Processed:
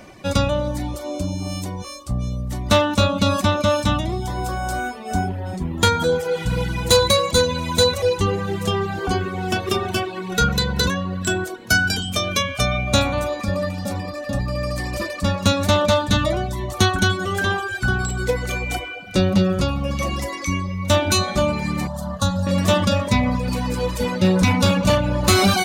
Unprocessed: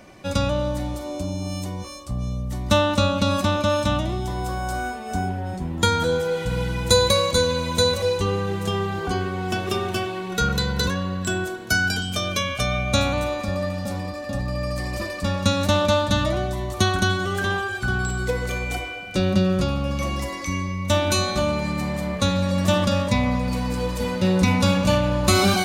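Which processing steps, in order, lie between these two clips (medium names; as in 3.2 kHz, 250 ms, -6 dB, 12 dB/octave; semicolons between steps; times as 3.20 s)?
hard clipper -13 dBFS, distortion -19 dB; 21.87–22.47 s: static phaser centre 940 Hz, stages 4; reverb removal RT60 0.74 s; trim +4.5 dB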